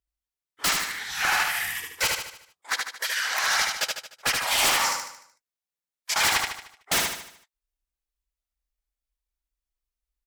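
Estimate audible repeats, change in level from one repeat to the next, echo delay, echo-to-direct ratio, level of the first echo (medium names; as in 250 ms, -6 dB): 5, -6.5 dB, 75 ms, -2.5 dB, -3.5 dB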